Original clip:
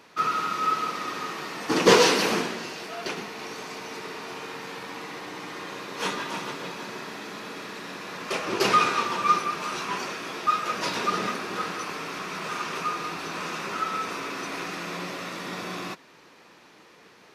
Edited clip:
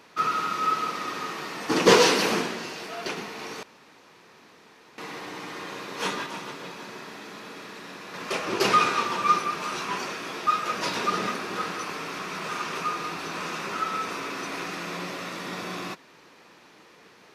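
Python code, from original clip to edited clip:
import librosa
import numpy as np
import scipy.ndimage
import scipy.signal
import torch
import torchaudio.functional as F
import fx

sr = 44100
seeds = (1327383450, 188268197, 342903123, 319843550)

y = fx.edit(x, sr, fx.room_tone_fill(start_s=3.63, length_s=1.35),
    fx.clip_gain(start_s=6.26, length_s=1.88, db=-3.5), tone=tone)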